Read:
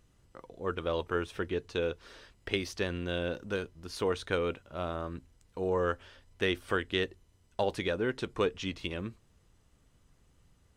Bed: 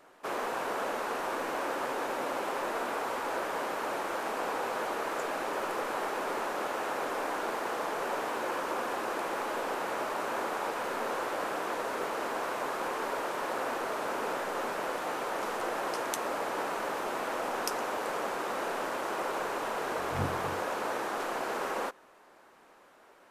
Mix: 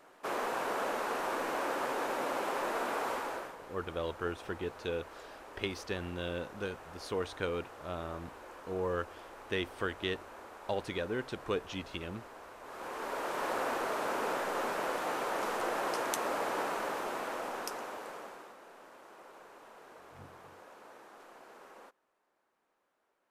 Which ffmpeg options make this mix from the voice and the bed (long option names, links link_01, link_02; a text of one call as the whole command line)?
ffmpeg -i stem1.wav -i stem2.wav -filter_complex "[0:a]adelay=3100,volume=-4.5dB[link_01];[1:a]volume=15dB,afade=type=out:start_time=3.11:duration=0.45:silence=0.16788,afade=type=in:start_time=12.62:duration=0.84:silence=0.158489,afade=type=out:start_time=16.52:duration=2.05:silence=0.1[link_02];[link_01][link_02]amix=inputs=2:normalize=0" out.wav